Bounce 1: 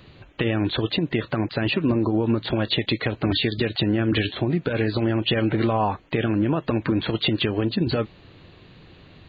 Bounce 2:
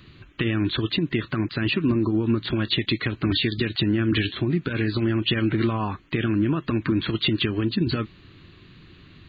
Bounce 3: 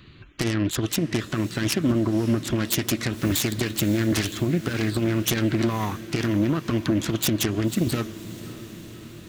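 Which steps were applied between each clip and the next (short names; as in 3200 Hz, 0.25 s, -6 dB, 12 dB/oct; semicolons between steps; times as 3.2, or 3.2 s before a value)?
band shelf 640 Hz -11 dB 1.2 oct
self-modulated delay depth 0.36 ms; diffused feedback echo 0.555 s, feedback 63%, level -15.5 dB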